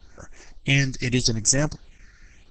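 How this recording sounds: phasing stages 6, 0.81 Hz, lowest notch 800–4100 Hz; Opus

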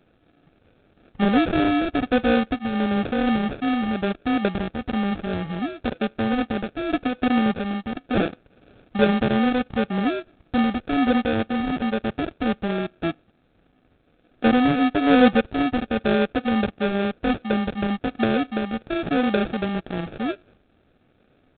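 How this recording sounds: a quantiser's noise floor 12-bit, dither none; phasing stages 2, 1 Hz, lowest notch 700–1500 Hz; aliases and images of a low sample rate 1 kHz, jitter 0%; G.726

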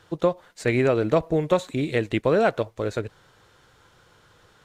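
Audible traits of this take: noise floor -58 dBFS; spectral tilt -6.0 dB/octave

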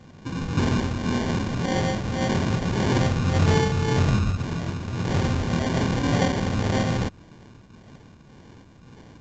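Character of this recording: phasing stages 2, 1.8 Hz, lowest notch 580–4200 Hz; aliases and images of a low sample rate 1.3 kHz, jitter 0%; A-law

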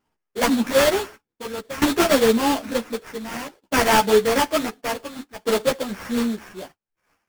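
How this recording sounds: a buzz of ramps at a fixed pitch in blocks of 8 samples; tremolo saw down 0.55 Hz, depth 90%; aliases and images of a low sample rate 3.9 kHz, jitter 20%; a shimmering, thickened sound

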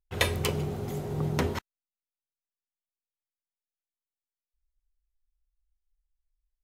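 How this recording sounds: noise floor -95 dBFS; spectral tilt -5.0 dB/octave

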